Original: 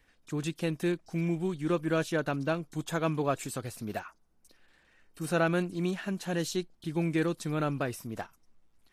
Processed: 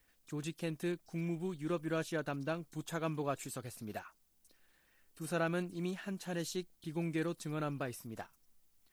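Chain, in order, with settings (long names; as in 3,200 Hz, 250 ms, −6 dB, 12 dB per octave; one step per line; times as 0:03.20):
high-shelf EQ 7,800 Hz +4 dB
background noise blue −69 dBFS
level −7.5 dB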